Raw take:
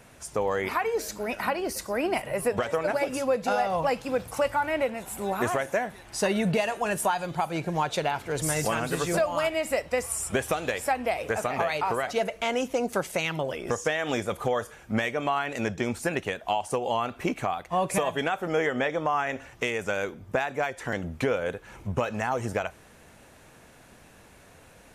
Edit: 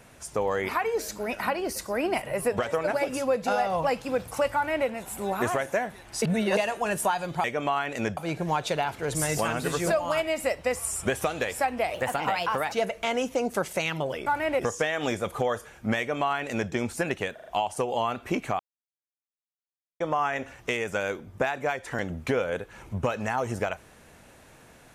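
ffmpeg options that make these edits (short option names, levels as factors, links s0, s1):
-filter_complex "[0:a]asplit=14[s0][s1][s2][s3][s4][s5][s6][s7][s8][s9][s10][s11][s12][s13];[s0]atrim=end=6.222[s14];[s1]atrim=start=6.218:end=6.572,asetpts=PTS-STARTPTS,areverse[s15];[s2]atrim=start=6.568:end=7.442[s16];[s3]atrim=start=15.038:end=15.772[s17];[s4]atrim=start=7.438:end=11.214[s18];[s5]atrim=start=11.21:end=12.11,asetpts=PTS-STARTPTS,asetrate=50715,aresample=44100,atrim=end_sample=34513,asetpts=PTS-STARTPTS[s19];[s6]atrim=start=12.106:end=13.652[s20];[s7]atrim=start=4.538:end=4.872[s21];[s8]atrim=start=13.648:end=16.442[s22];[s9]atrim=start=16.398:end=16.442[s23];[s10]atrim=start=16.398:end=16.442[s24];[s11]atrim=start=16.398:end=17.53,asetpts=PTS-STARTPTS,afade=t=out:st=1.128:d=0.004:c=hsin[s25];[s12]atrim=start=17.53:end=18.94,asetpts=PTS-STARTPTS,volume=0[s26];[s13]atrim=start=18.94,asetpts=PTS-STARTPTS,afade=t=in:d=0.004:c=hsin[s27];[s14][s15]acrossfade=d=0.004:c1=hsin:c2=hsin[s28];[s28][s16]acrossfade=d=0.004:c1=hsin:c2=hsin[s29];[s29][s17]acrossfade=d=0.004:c1=hsin:c2=hsin[s30];[s30][s18]acrossfade=d=0.004:c1=hsin:c2=hsin[s31];[s31][s19]acrossfade=d=0.004:c1=hsin:c2=hsin[s32];[s32][s20]acrossfade=d=0.004:c1=hsin:c2=hsin[s33];[s33][s21]acrossfade=d=0.004:c1=hsin:c2=hsin[s34];[s34][s22]acrossfade=d=0.004:c1=hsin:c2=hsin[s35];[s35][s23]acrossfade=d=0.004:c1=hsin:c2=hsin[s36];[s36][s24]acrossfade=d=0.004:c1=hsin:c2=hsin[s37];[s25][s26][s27]concat=n=3:v=0:a=1[s38];[s37][s38]acrossfade=d=0.004:c1=hsin:c2=hsin"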